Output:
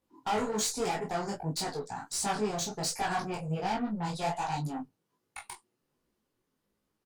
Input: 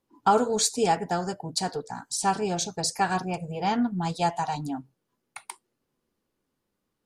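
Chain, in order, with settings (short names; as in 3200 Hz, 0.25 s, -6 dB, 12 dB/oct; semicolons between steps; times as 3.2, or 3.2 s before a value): tube stage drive 27 dB, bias 0.25; doubler 19 ms -5.5 dB; detuned doubles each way 46 cents; gain +2.5 dB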